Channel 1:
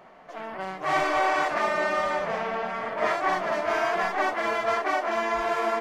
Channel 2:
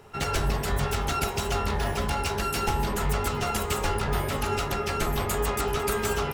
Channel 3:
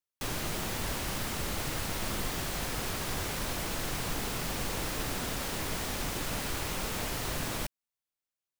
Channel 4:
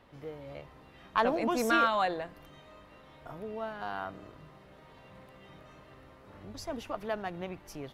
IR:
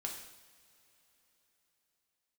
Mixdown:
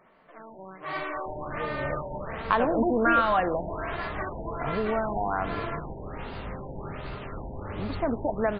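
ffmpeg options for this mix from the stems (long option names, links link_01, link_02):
-filter_complex "[0:a]equalizer=frequency=740:width_type=o:width=0.35:gain=-8,volume=-7dB[link_01];[1:a]adelay=2350,volume=-16dB[link_02];[2:a]lowpass=3900,adelay=1050,volume=-7.5dB[link_03];[3:a]lowpass=2900,dynaudnorm=framelen=280:gausssize=3:maxgain=8.5dB,adelay=1350,volume=2.5dB,asplit=2[link_04][link_05];[link_05]volume=-14.5dB[link_06];[link_01][link_02][link_04]amix=inputs=3:normalize=0,acompressor=threshold=-24dB:ratio=6,volume=0dB[link_07];[4:a]atrim=start_sample=2205[link_08];[link_06][link_08]afir=irnorm=-1:irlink=0[link_09];[link_03][link_07][link_09]amix=inputs=3:normalize=0,lowshelf=frequency=160:gain=3.5,afftfilt=real='re*lt(b*sr/1024,940*pow(5000/940,0.5+0.5*sin(2*PI*1.3*pts/sr)))':imag='im*lt(b*sr/1024,940*pow(5000/940,0.5+0.5*sin(2*PI*1.3*pts/sr)))':win_size=1024:overlap=0.75"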